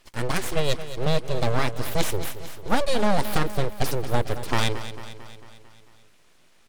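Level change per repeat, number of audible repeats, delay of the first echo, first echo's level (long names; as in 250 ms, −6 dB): −4.5 dB, 5, 224 ms, −12.5 dB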